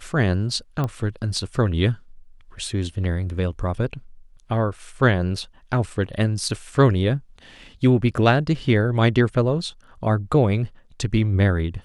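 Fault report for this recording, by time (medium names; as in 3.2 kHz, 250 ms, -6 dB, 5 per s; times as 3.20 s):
0.84 s: pop -14 dBFS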